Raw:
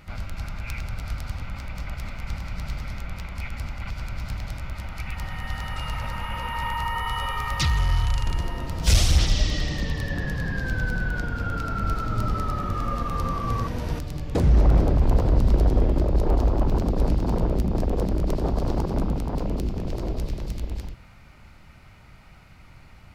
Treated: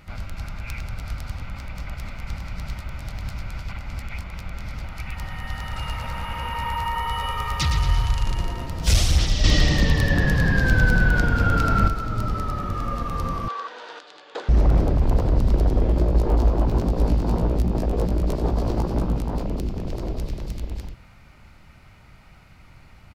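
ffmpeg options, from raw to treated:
ffmpeg -i in.wav -filter_complex "[0:a]asplit=3[link_01][link_02][link_03];[link_01]afade=type=out:start_time=5.69:duration=0.02[link_04];[link_02]aecho=1:1:114|228|342|456|570|684|798:0.447|0.241|0.13|0.0703|0.038|0.0205|0.0111,afade=type=in:start_time=5.69:duration=0.02,afade=type=out:start_time=8.66:duration=0.02[link_05];[link_03]afade=type=in:start_time=8.66:duration=0.02[link_06];[link_04][link_05][link_06]amix=inputs=3:normalize=0,asettb=1/sr,asplit=3[link_07][link_08][link_09];[link_07]atrim=end=13.484[link_10];[link_08]atrim=start=13.48:end=14.49,asetpts=PTS-STARTPTS,afade=type=in:duration=0.004:curve=qsin,afade=type=out:start_time=1.006:duration=0.004:curve=qsin,highpass=frequency=490:width=0.5412,highpass=frequency=490:width=1.3066,equalizer=frequency=620:width_type=q:width=4:gain=-7,equalizer=frequency=1500:width_type=q:width=4:gain=6,equalizer=frequency=2200:width_type=q:width=4:gain=-4,equalizer=frequency=3500:width_type=q:width=4:gain=5,equalizer=frequency=5600:width_type=q:width=4:gain=-7,lowpass=frequency=6200:width=0.5412,lowpass=frequency=6200:width=1.3066[link_11];[link_09]atrim=start=14.486[link_12];[link_10][link_11]acrossfade=duration=0.004:curve1=hsin:curve2=qsin[link_13];[link_13][link_12]acrossfade=duration=0.004:curve1=qsin:curve2=hsin,asettb=1/sr,asplit=3[link_14][link_15][link_16];[link_14]atrim=end=15.844[link_17];[link_15]atrim=start=15.84:end=19.43,asetpts=PTS-STARTPTS,afade=type=in:duration=0.004:curve=qsin,afade=type=out:start_time=3.586:duration=0.004:curve=qsin,asplit=2[link_18][link_19];[link_19]adelay=17,volume=-5dB[link_20];[link_18][link_20]amix=inputs=2:normalize=0,atrim=end_sample=158319[link_21];[link_16]atrim=start=19.426[link_22];[link_17][link_21]acrossfade=duration=0.004:curve1=hsin:curve2=qsin[link_23];[link_23][link_22]acrossfade=duration=0.004:curve1=qsin:curve2=hsin,asplit=5[link_24][link_25][link_26][link_27][link_28];[link_24]atrim=end=2.752[link_29];[link_25]atrim=start=2.748:end=4.842,asetpts=PTS-STARTPTS,areverse[link_30];[link_26]atrim=start=4.838:end=9.442[link_31];[link_27]atrim=start=9.438:end=11.882,asetpts=PTS-STARTPTS,volume=8.5dB[link_32];[link_28]atrim=start=11.878[link_33];[link_29][link_30]acrossfade=duration=0.004:curve1=hsin:curve2=hsin[link_34];[link_34][link_31]acrossfade=duration=0.004:curve1=hsin:curve2=hsin[link_35];[link_35][link_32]acrossfade=duration=0.004:curve1=hsin:curve2=hsin[link_36];[link_36][link_33]acrossfade=duration=0.004:curve1=hsin:curve2=hsin" out.wav

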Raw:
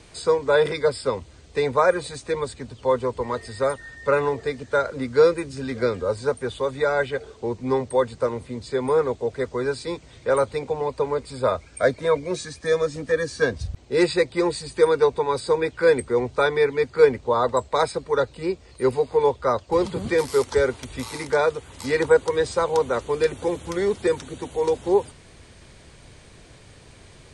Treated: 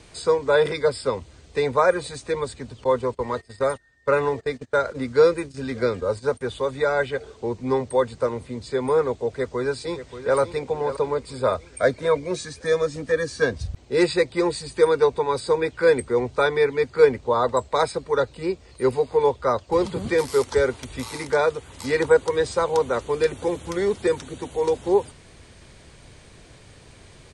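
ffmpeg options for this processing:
ffmpeg -i in.wav -filter_complex "[0:a]asettb=1/sr,asplit=3[link_01][link_02][link_03];[link_01]atrim=end=2.844[link_04];[link_02]atrim=start=2.84:end=6.41,asetpts=PTS-STARTPTS,afade=type=in:duration=0.004:curve=qsin,afade=type=out:start_time=3.566:duration=0.004:curve=qsin,agate=range=-20dB:threshold=-36dB:ratio=16:release=100:detection=peak[link_05];[link_03]atrim=start=6.406[link_06];[link_04][link_05]acrossfade=duration=0.004:curve1=hsin:curve2=qsin[link_07];[link_07][link_06]acrossfade=duration=0.004:curve1=qsin:curve2=hsin,asplit=2[link_08][link_09];[link_09]afade=type=in:start_time=9.26:duration=0.01,afade=type=out:start_time=10.38:duration=0.01,aecho=0:1:580|1160|1740|2320|2900:0.266073|0.133036|0.0665181|0.0332591|0.0166295[link_10];[link_08][link_10]amix=inputs=2:normalize=0" out.wav

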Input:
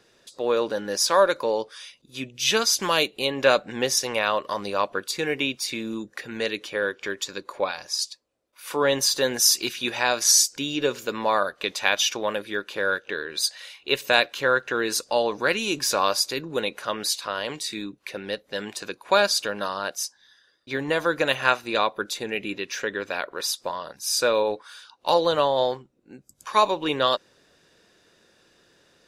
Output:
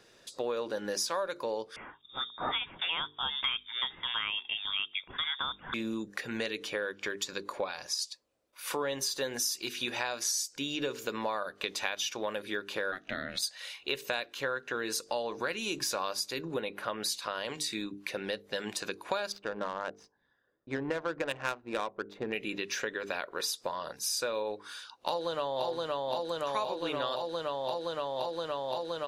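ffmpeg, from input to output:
ffmpeg -i in.wav -filter_complex "[0:a]asettb=1/sr,asplit=3[link_01][link_02][link_03];[link_01]atrim=end=1.764[link_04];[link_02]atrim=start=1.76:end=5.74,asetpts=PTS-STARTPTS,afade=type=in:duration=0.004:curve=qsin,afade=type=out:start_time=3.976:duration=0.004:curve=qsin,lowpass=frequency=3200:width_type=q:width=0.5098,lowpass=frequency=3200:width_type=q:width=0.6013,lowpass=frequency=3200:width_type=q:width=0.9,lowpass=frequency=3200:width_type=q:width=2.563,afreqshift=-3800[link_05];[link_03]atrim=start=5.736[link_06];[link_04][link_05]acrossfade=duration=0.004:curve1=hsin:curve2=qsin[link_07];[link_07][link_06]acrossfade=duration=0.004:curve1=qsin:curve2=hsin,asplit=3[link_08][link_09][link_10];[link_08]afade=type=out:start_time=12.91:duration=0.02[link_11];[link_09]aeval=exprs='val(0)*sin(2*PI*190*n/s)':channel_layout=same,afade=type=in:start_time=12.91:duration=0.02,afade=type=out:start_time=13.41:duration=0.02[link_12];[link_10]afade=type=in:start_time=13.41:duration=0.02[link_13];[link_11][link_12][link_13]amix=inputs=3:normalize=0,asettb=1/sr,asplit=3[link_14][link_15][link_16];[link_14]atrim=end=16.544[link_17];[link_15]atrim=start=16.54:end=17.03,asetpts=PTS-STARTPTS,afade=type=in:duration=0.004:curve=qsin,afade=type=out:start_time=0.486:duration=0.004:curve=qsin,equalizer=frequency=6600:width_type=o:width=1.3:gain=-13.5[link_18];[link_16]atrim=start=17.026[link_19];[link_17][link_18]acrossfade=duration=0.004:curve1=hsin:curve2=qsin[link_20];[link_20][link_19]acrossfade=duration=0.004:curve1=qsin:curve2=hsin,asettb=1/sr,asplit=3[link_21][link_22][link_23];[link_21]atrim=end=19.324[link_24];[link_22]atrim=start=19.32:end=22.33,asetpts=PTS-STARTPTS,afade=type=in:duration=0.004:curve=qsin,afade=type=out:start_time=3.006:duration=0.004:curve=qsin,adynamicsmooth=sensitivity=1:basefreq=810[link_25];[link_23]atrim=start=22.326[link_26];[link_24][link_25]acrossfade=duration=0.004:curve1=hsin:curve2=qsin[link_27];[link_27][link_26]acrossfade=duration=0.004:curve1=qsin:curve2=hsin,asplit=2[link_28][link_29];[link_29]afade=type=in:start_time=24.68:duration=0.01,afade=type=out:start_time=25.66:duration=0.01,aecho=0:1:520|1040|1560|2080|2600|3120|3640|4160|4680|5200|5720|6240:0.749894|0.63741|0.541799|0.460529|0.391449|0.332732|0.282822|0.240399|0.204339|0.173688|0.147635|0.12549[link_30];[link_28][link_30]amix=inputs=2:normalize=0,bandreject=frequency=50:width_type=h:width=6,bandreject=frequency=100:width_type=h:width=6,bandreject=frequency=150:width_type=h:width=6,bandreject=frequency=200:width_type=h:width=6,bandreject=frequency=250:width_type=h:width=6,bandreject=frequency=300:width_type=h:width=6,bandreject=frequency=350:width_type=h:width=6,bandreject=frequency=400:width_type=h:width=6,bandreject=frequency=450:width_type=h:width=6,acompressor=threshold=-31dB:ratio=5" out.wav

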